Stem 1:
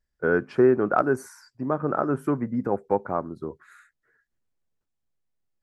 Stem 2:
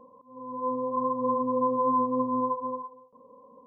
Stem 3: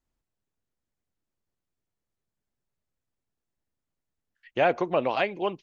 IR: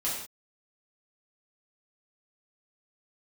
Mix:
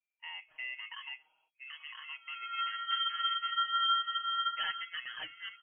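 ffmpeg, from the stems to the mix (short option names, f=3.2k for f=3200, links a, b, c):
-filter_complex "[0:a]bandreject=f=50:t=h:w=6,bandreject=f=100:t=h:w=6,bandreject=f=150:t=h:w=6,bandreject=f=200:t=h:w=6,alimiter=limit=-15dB:level=0:latency=1:release=41,volume=-18.5dB[a];[1:a]highpass=f=820:w=0.5412,highpass=f=820:w=1.3066,adelay=1950,volume=0.5dB[b];[2:a]bandreject=f=425.2:t=h:w=4,bandreject=f=850.4:t=h:w=4,bandreject=f=1.2756k:t=h:w=4,bandreject=f=1.7008k:t=h:w=4,volume=-15.5dB[c];[a][b][c]amix=inputs=3:normalize=0,aeval=exprs='val(0)*sin(2*PI*910*n/s)':c=same,lowpass=f=2.8k:t=q:w=0.5098,lowpass=f=2.8k:t=q:w=0.6013,lowpass=f=2.8k:t=q:w=0.9,lowpass=f=2.8k:t=q:w=2.563,afreqshift=-3300,aecho=1:1:6.4:0.78"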